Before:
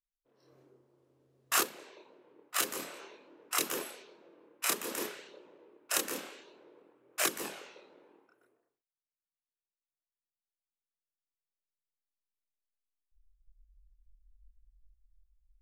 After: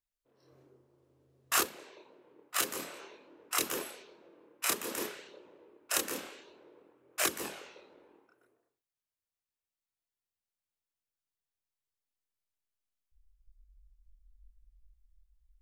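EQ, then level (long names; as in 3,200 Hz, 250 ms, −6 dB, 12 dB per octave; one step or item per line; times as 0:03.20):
parametric band 78 Hz +11.5 dB 0.79 octaves
0.0 dB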